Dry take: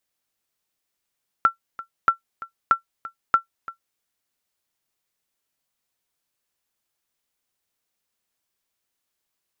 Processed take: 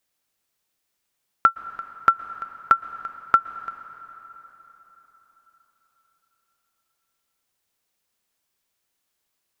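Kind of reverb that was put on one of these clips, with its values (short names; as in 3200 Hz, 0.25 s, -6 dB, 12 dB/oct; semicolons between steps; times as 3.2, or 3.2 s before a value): plate-style reverb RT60 4.4 s, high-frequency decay 0.75×, pre-delay 0.105 s, DRR 13.5 dB; gain +3 dB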